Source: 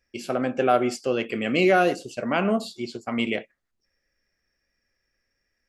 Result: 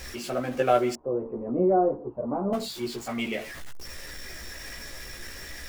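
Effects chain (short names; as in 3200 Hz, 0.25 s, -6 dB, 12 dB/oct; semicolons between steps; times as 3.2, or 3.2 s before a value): zero-crossing step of -33 dBFS; in parallel at -3 dB: level quantiser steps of 20 dB; on the sum: chorus voices 6, 0.89 Hz, delay 15 ms, depth 1.8 ms; 0.95–2.53 Chebyshev low-pass 1000 Hz, order 4; gain -3 dB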